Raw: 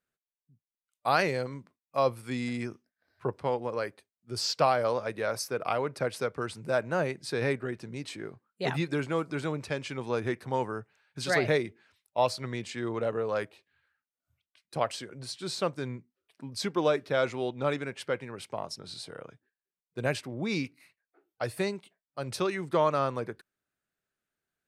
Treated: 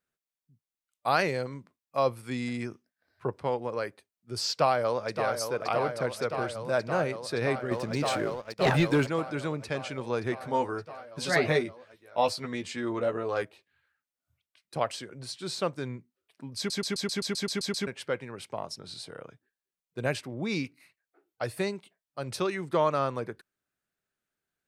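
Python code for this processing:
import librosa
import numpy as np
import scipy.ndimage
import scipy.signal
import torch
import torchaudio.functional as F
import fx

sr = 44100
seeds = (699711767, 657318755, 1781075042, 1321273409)

y = fx.echo_throw(x, sr, start_s=4.51, length_s=0.83, ms=570, feedback_pct=85, wet_db=-7.5)
y = fx.leveller(y, sr, passes=2, at=(7.71, 9.07))
y = fx.doubler(y, sr, ms=12.0, db=-4, at=(10.4, 13.42))
y = fx.edit(y, sr, fx.stutter_over(start_s=16.57, slice_s=0.13, count=10), tone=tone)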